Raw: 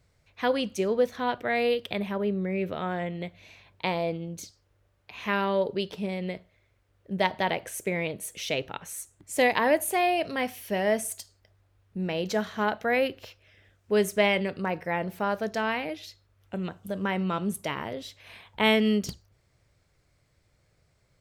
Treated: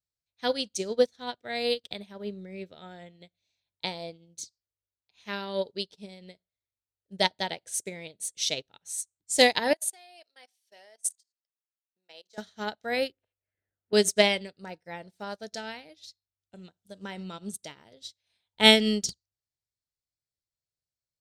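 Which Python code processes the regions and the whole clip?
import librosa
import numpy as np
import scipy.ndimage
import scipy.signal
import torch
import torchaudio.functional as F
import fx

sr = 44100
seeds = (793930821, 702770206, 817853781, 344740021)

y = fx.chain(x, sr, fx.highpass(hz=610.0, slope=12),
    fx.level_steps(step_db=17), at=(9.73, 12.38))
y = fx.chain(y, sr, fx.lowpass(hz=2000.0, slope=24),
    fx.band_squash(depth_pct=70), at=(13.12, 13.93))
y = fx.band_shelf(y, sr, hz=5800.0, db=14.0, octaves=1.7)
y = fx.notch(y, sr, hz=1100.0, q=5.8)
y = fx.upward_expand(y, sr, threshold_db=-43.0, expansion=2.5)
y = F.gain(torch.from_numpy(y), 4.5).numpy()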